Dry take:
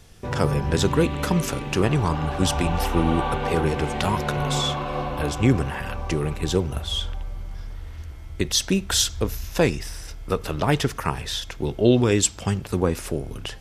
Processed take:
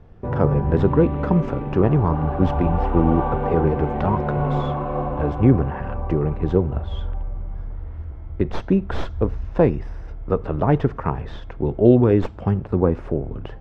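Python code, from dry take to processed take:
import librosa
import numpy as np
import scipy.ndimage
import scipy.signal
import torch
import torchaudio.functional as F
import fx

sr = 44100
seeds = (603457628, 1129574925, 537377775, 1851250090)

y = fx.tracing_dist(x, sr, depth_ms=0.13)
y = scipy.signal.sosfilt(scipy.signal.butter(2, 1000.0, 'lowpass', fs=sr, output='sos'), y)
y = y * 10.0 ** (4.0 / 20.0)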